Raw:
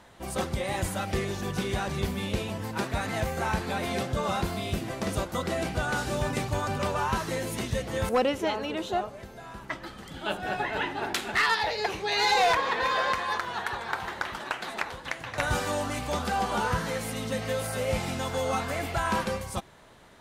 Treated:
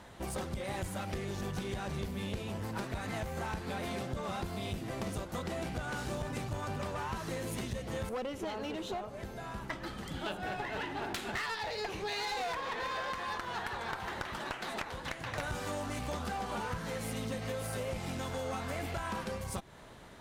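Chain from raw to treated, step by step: bass shelf 340 Hz +4 dB; compression 6:1, threshold -33 dBFS, peak gain reduction 13 dB; one-sided clip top -36.5 dBFS

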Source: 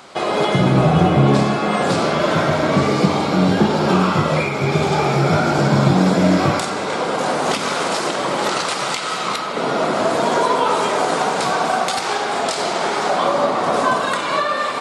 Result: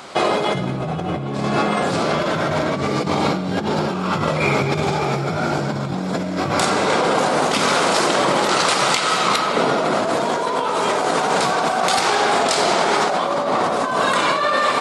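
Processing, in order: compressor with a negative ratio -21 dBFS, ratio -1; trim +1.5 dB

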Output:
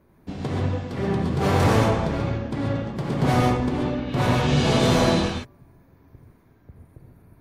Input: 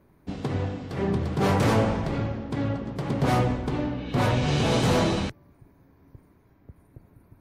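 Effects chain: gated-style reverb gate 160 ms rising, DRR -0.5 dB

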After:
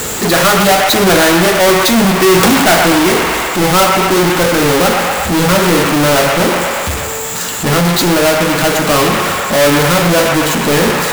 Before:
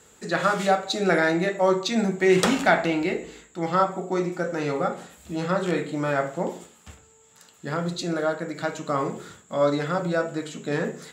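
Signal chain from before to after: square wave that keeps the level; treble shelf 5.8 kHz +8 dB; on a send: feedback echo behind a band-pass 120 ms, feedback 56%, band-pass 1.4 kHz, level -4 dB; on the sum: power-law waveshaper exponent 0.35; trim -4 dB

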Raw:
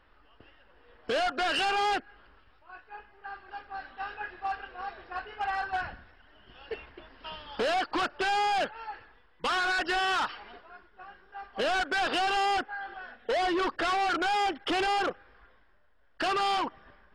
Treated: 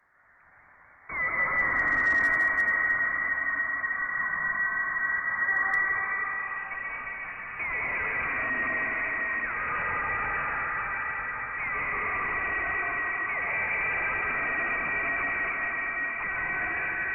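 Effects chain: backward echo that repeats 653 ms, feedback 62%, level -12 dB; 12.40–14.48 s: bass shelf 190 Hz +5.5 dB; hum notches 50/100/150/200/250/300/350/400 Hz; reverberation RT60 5.6 s, pre-delay 108 ms, DRR -8 dB; saturation -23 dBFS, distortion -8 dB; high-pass sweep 790 Hz -> 140 Hz, 5.68–6.75 s; frequency inversion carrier 2.7 kHz; hard clipper -15 dBFS, distortion -37 dB; peaking EQ 660 Hz +4.5 dB 0.25 oct; trim -3.5 dB; Opus 24 kbps 48 kHz

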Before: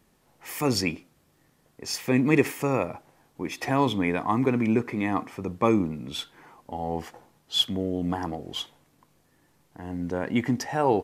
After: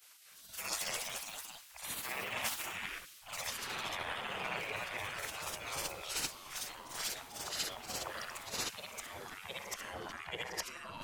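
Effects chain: short-time spectra conjugated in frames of 167 ms; reverse; compression 5:1, threshold -42 dBFS, peak gain reduction 21 dB; reverse; spectral gate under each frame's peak -20 dB weak; ever faster or slower copies 291 ms, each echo +2 st, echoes 3; trim +16.5 dB

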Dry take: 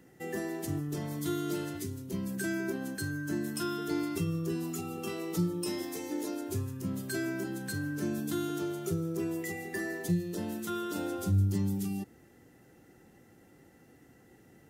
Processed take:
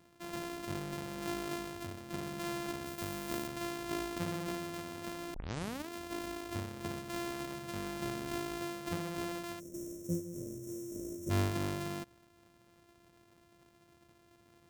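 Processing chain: sorted samples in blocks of 128 samples; 2.86–3.47 s: treble shelf 9 kHz +9 dB; 5.34 s: tape start 0.54 s; 9.59–11.30 s: time-frequency box 660–5400 Hz -28 dB; trim -5.5 dB

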